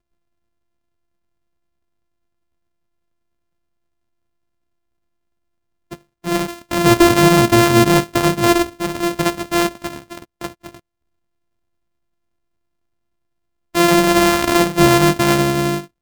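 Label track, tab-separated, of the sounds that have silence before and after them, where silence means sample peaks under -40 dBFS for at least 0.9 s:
5.910000	10.790000	sound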